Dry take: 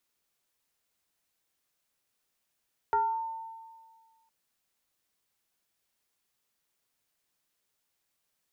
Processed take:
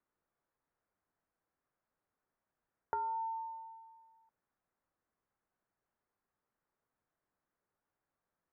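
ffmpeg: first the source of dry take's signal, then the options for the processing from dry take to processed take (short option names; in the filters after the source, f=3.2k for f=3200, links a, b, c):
-f lavfi -i "aevalsrc='0.0841*pow(10,-3*t/1.73)*sin(2*PI*901*t+0.69*pow(10,-3*t/0.57)*sin(2*PI*0.54*901*t))':d=1.36:s=44100"
-af "lowpass=f=1.6k:w=0.5412,lowpass=f=1.6k:w=1.3066,acompressor=threshold=-35dB:ratio=6"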